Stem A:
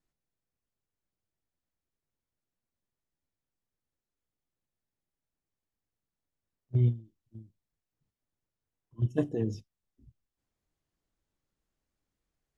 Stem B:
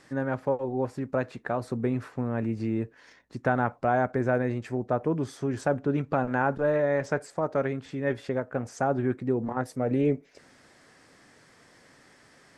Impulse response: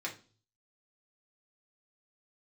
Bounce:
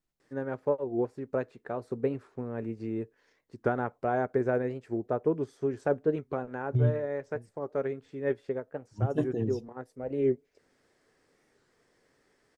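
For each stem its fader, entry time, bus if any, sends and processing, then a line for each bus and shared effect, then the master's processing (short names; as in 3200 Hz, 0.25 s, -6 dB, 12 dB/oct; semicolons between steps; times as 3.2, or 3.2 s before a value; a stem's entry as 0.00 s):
-0.5 dB, 0.00 s, no send, dry
-3.0 dB, 0.20 s, no send, bell 420 Hz +9 dB 0.6 oct; upward expander 1.5:1, over -38 dBFS; auto duck -6 dB, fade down 0.75 s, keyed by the first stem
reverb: off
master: record warp 45 rpm, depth 160 cents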